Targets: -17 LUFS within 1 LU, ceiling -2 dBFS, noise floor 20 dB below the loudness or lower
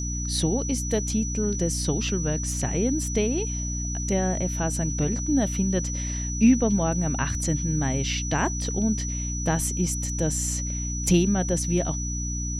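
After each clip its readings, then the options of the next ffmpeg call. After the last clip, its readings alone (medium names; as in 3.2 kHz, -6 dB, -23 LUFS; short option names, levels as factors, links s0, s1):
hum 60 Hz; highest harmonic 300 Hz; hum level -28 dBFS; steady tone 5.9 kHz; tone level -32 dBFS; loudness -25.0 LUFS; peak level -7.5 dBFS; loudness target -17.0 LUFS
-> -af "bandreject=f=60:t=h:w=6,bandreject=f=120:t=h:w=6,bandreject=f=180:t=h:w=6,bandreject=f=240:t=h:w=6,bandreject=f=300:t=h:w=6"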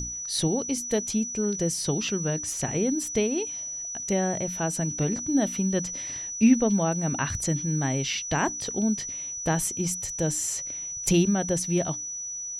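hum not found; steady tone 5.9 kHz; tone level -32 dBFS
-> -af "bandreject=f=5900:w=30"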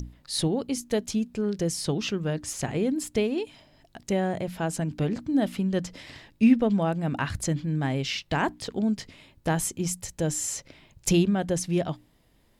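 steady tone not found; loudness -27.5 LUFS; peak level -9.0 dBFS; loudness target -17.0 LUFS
-> -af "volume=3.35,alimiter=limit=0.794:level=0:latency=1"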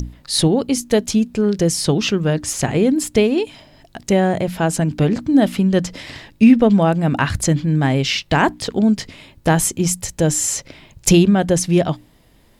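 loudness -17.0 LUFS; peak level -2.0 dBFS; noise floor -52 dBFS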